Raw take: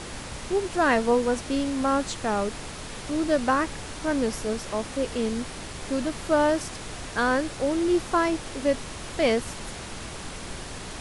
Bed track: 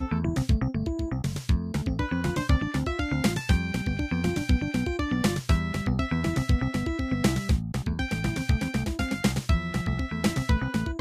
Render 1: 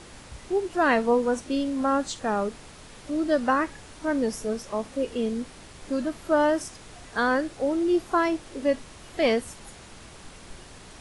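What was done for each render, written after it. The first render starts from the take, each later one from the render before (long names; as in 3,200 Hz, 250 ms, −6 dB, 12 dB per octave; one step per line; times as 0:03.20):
noise reduction from a noise print 9 dB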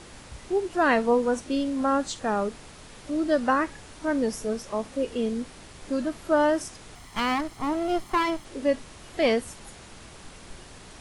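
0:06.95–0:08.45: lower of the sound and its delayed copy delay 0.95 ms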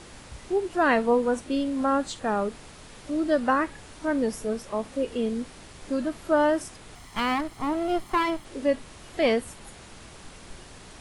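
dynamic equaliser 5,900 Hz, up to −5 dB, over −53 dBFS, Q 2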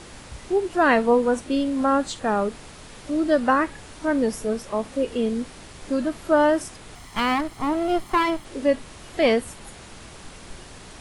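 level +3.5 dB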